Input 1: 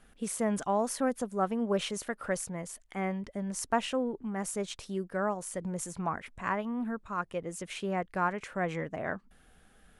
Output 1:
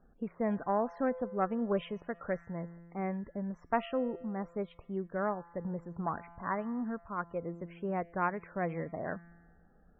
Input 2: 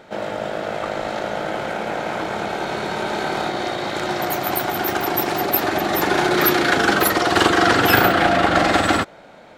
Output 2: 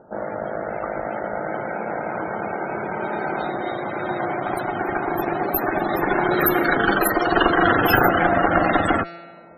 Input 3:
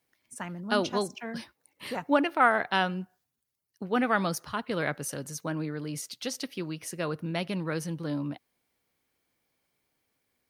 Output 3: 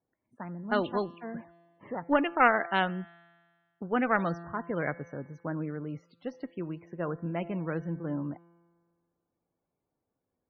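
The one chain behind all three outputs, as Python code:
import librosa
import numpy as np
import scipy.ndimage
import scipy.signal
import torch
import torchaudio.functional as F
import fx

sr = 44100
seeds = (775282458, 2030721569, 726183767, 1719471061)

y = fx.env_lowpass(x, sr, base_hz=920.0, full_db=-14.5)
y = fx.comb_fb(y, sr, f0_hz=170.0, decay_s=1.7, harmonics='all', damping=0.0, mix_pct=60)
y = fx.cheby_harmonics(y, sr, harmonics=(2, 4, 6, 8), levels_db=(-19, -28, -12, -20), full_scale_db=-8.5)
y = fx.spec_topn(y, sr, count=64)
y = y * 10.0 ** (6.0 / 20.0)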